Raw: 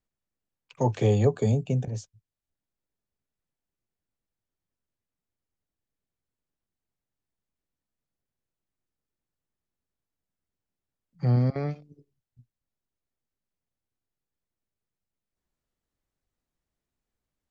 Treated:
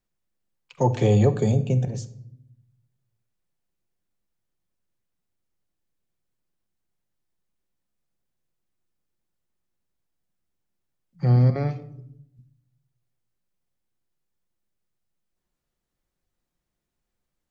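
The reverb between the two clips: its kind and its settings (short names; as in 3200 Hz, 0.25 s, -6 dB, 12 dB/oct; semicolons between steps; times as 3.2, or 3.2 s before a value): shoebox room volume 2000 m³, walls furnished, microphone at 0.91 m; gain +3 dB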